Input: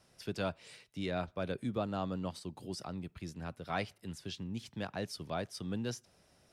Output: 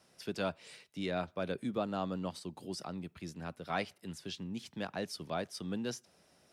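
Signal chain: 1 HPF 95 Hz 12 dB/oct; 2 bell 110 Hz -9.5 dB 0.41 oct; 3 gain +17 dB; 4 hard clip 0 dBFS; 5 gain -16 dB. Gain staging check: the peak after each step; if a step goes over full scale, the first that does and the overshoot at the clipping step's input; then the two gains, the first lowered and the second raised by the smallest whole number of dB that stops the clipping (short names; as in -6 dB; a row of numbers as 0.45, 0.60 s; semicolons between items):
-22.5, -22.5, -5.5, -5.5, -21.5 dBFS; no overload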